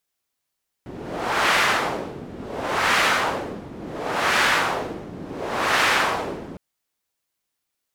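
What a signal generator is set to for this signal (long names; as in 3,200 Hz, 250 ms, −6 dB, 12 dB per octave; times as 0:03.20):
wind from filtered noise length 5.71 s, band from 250 Hz, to 1,700 Hz, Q 1.1, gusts 4, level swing 17.5 dB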